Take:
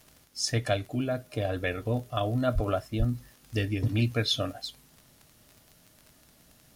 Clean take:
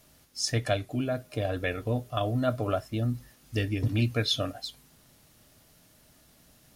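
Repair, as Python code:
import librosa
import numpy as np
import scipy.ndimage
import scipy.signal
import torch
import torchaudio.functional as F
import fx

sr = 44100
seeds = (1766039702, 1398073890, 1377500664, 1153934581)

y = fx.fix_declick_ar(x, sr, threshold=6.5)
y = fx.fix_deplosive(y, sr, at_s=(2.54, 2.98))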